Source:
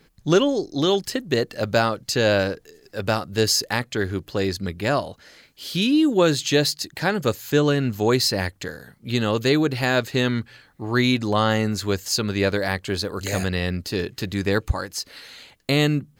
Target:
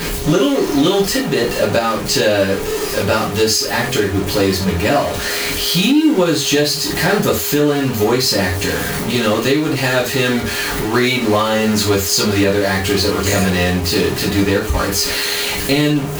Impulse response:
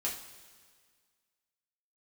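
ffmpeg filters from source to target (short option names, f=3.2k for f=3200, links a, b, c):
-filter_complex "[0:a]aeval=exprs='val(0)+0.5*0.0891*sgn(val(0))':c=same,aeval=exprs='val(0)+0.0126*sin(2*PI*410*n/s)':c=same[a];[1:a]atrim=start_sample=2205,atrim=end_sample=4410[b];[a][b]afir=irnorm=-1:irlink=0,alimiter=limit=-8.5dB:level=0:latency=1:release=397,volume=4dB"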